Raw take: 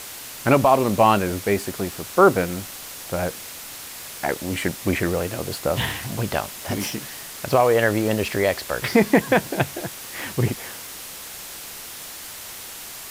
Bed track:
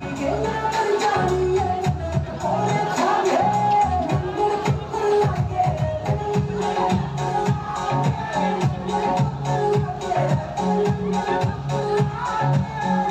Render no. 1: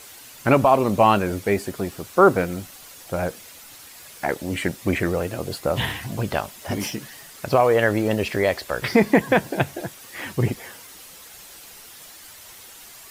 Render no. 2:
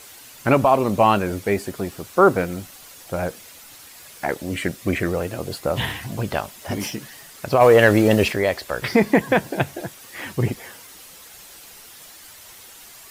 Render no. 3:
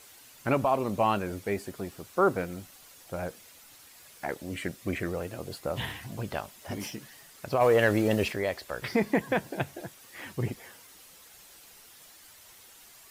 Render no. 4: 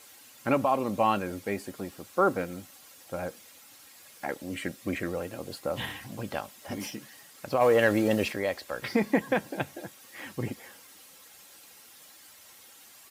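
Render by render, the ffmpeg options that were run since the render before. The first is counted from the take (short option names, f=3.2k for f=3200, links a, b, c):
-af "afftdn=nr=9:nf=-37"
-filter_complex "[0:a]asettb=1/sr,asplit=3[a][b][c];[a]atrim=end=4.454[d];[b]atrim=start=4.45:end=5.09,asetpts=PTS-STARTPTS,afade=t=in:d=0.004:c=qsin,afade=t=out:st=0.636:d=0.004:c=qsin,bandreject=f=870:w=5.9[e];[c]atrim=start=5.086[f];[d][e]acrossfade=d=0.004:c1=hsin:c2=qsin[g];[g][f]acrossfade=d=0.004:c1=qsin:c2=hsin,asplit=3[h][i][j];[h]afade=t=out:st=7.6:d=0.02[k];[i]acontrast=72,afade=t=in:st=7.6:d=0.02,afade=t=out:st=8.31:d=0.02[l];[j]afade=t=in:st=8.31:d=0.02[m];[k][l][m]amix=inputs=3:normalize=0"
-af "volume=-9.5dB"
-af "highpass=96,aecho=1:1:3.7:0.3"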